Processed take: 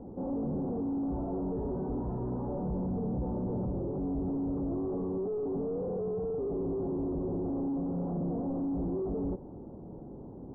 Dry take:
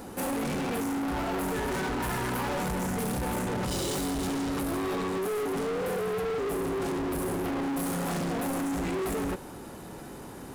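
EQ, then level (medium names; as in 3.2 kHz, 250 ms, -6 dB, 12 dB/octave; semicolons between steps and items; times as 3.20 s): Bessel low-pass 510 Hz, order 6; distance through air 300 m; 0.0 dB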